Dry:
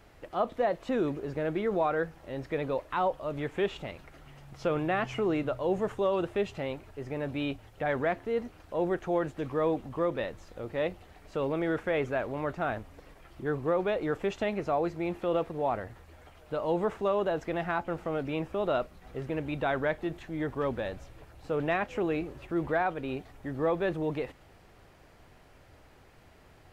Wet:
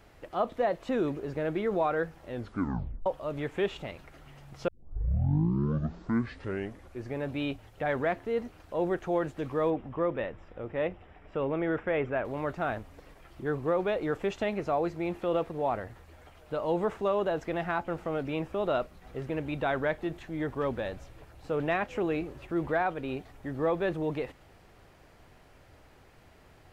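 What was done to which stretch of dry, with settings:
2.30 s: tape stop 0.76 s
4.68 s: tape start 2.59 s
9.70–12.25 s: Savitzky-Golay filter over 25 samples

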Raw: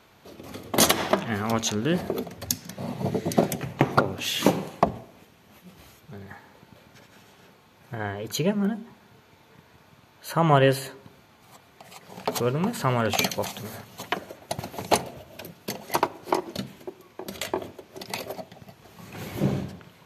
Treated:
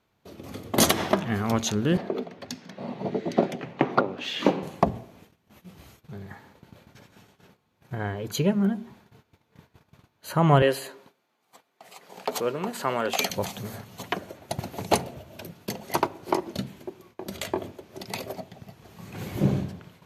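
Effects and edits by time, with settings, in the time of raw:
1.97–4.63 s: three-band isolator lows -23 dB, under 190 Hz, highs -22 dB, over 4.7 kHz
10.62–13.30 s: high-pass 340 Hz
whole clip: bass shelf 330 Hz +5.5 dB; gate -50 dBFS, range -15 dB; trim -2 dB

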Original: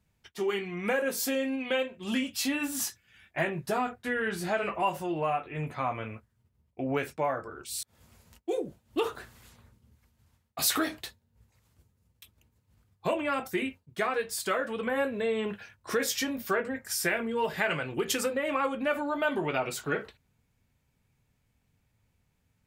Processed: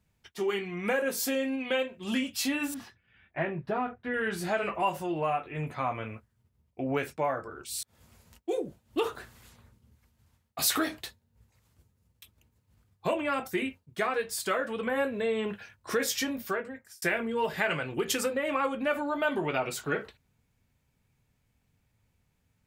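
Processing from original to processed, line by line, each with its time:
2.74–4.14 s: distance through air 390 m
16.32–17.02 s: fade out linear

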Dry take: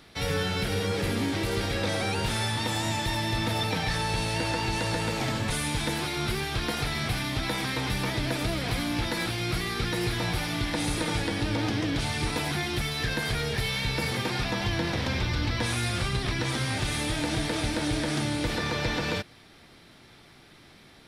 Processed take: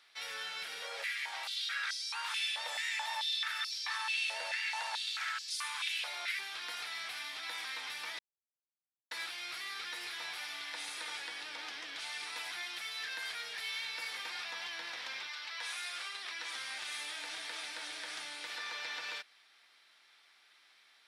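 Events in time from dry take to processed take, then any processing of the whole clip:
0.82–6.39 s: step-sequenced high-pass 4.6 Hz 580–5000 Hz
8.19–9.11 s: mute
15.27–16.53 s: high-pass 680 Hz -> 200 Hz
whole clip: high-pass 1.3 kHz 12 dB/octave; treble shelf 9.9 kHz -9 dB; trim -7 dB

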